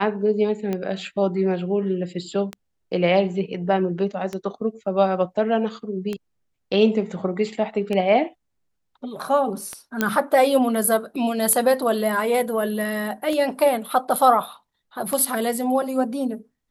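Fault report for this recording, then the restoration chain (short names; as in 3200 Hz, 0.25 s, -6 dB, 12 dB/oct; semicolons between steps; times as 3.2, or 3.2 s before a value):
tick 33 1/3 rpm -14 dBFS
10.01 pop -6 dBFS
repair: de-click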